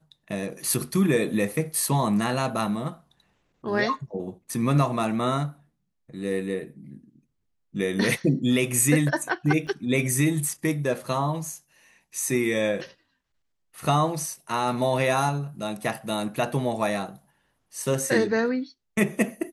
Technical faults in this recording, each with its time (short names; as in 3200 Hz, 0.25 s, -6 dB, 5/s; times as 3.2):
9.67 gap 3 ms